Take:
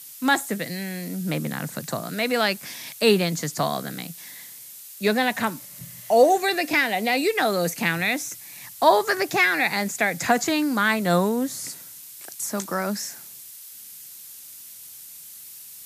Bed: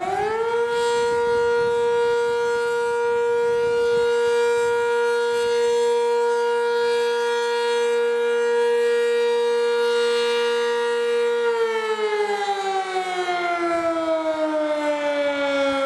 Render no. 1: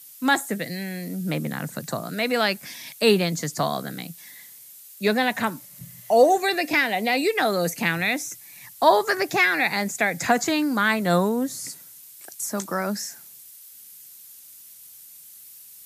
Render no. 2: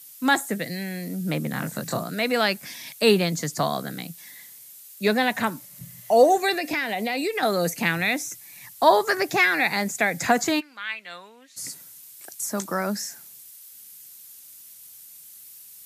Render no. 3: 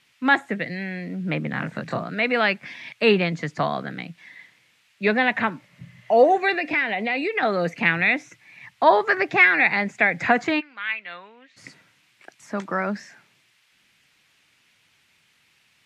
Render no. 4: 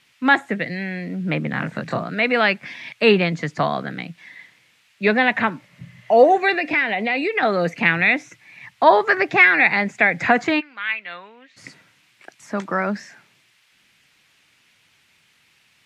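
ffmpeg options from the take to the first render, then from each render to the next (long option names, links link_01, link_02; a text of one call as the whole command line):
ffmpeg -i in.wav -af "afftdn=noise_reduction=6:noise_floor=-43" out.wav
ffmpeg -i in.wav -filter_complex "[0:a]asettb=1/sr,asplit=3[link_01][link_02][link_03];[link_01]atrim=end=1.514[link_04];[link_02]atrim=start=1.51:end=2.04,asetpts=PTS-STARTPTS,afade=type=in:duration=0.004:curve=qsin,afade=type=out:start_time=0.526:duration=0.004:curve=qsin,asplit=2[link_05][link_06];[link_06]adelay=24,volume=-2.5dB[link_07];[link_05][link_07]amix=inputs=2:normalize=0,atrim=end_sample=23373[link_08];[link_03]atrim=start=2.036[link_09];[link_04][link_08]acrossfade=duration=0.004:curve1=hsin:curve2=qsin[link_10];[link_10][link_09]acrossfade=duration=0.004:curve1=qsin:curve2=hsin,asettb=1/sr,asplit=3[link_11][link_12][link_13];[link_11]atrim=end=6.544[link_14];[link_12]atrim=start=6.54:end=7.43,asetpts=PTS-STARTPTS,afade=type=in:duration=0.004:curve=qsin,afade=type=out:start_time=0.886:duration=0.004:curve=qsin,acompressor=threshold=-23dB:ratio=3:attack=3.2:release=140:knee=1:detection=peak[link_15];[link_13]atrim=start=7.426[link_16];[link_14][link_15]acrossfade=duration=0.004:curve1=hsin:curve2=qsin[link_17];[link_17][link_16]acrossfade=duration=0.004:curve1=qsin:curve2=hsin,asplit=3[link_18][link_19][link_20];[link_18]afade=type=out:start_time=10.59:duration=0.02[link_21];[link_19]bandpass=frequency=2600:width_type=q:width=3.5,afade=type=in:start_time=10.59:duration=0.02,afade=type=out:start_time=11.56:duration=0.02[link_22];[link_20]afade=type=in:start_time=11.56:duration=0.02[link_23];[link_21][link_22][link_23]amix=inputs=3:normalize=0" out.wav
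ffmpeg -i in.wav -af "lowpass=frequency=2400:width_type=q:width=1.8" out.wav
ffmpeg -i in.wav -af "volume=3dB,alimiter=limit=-2dB:level=0:latency=1" out.wav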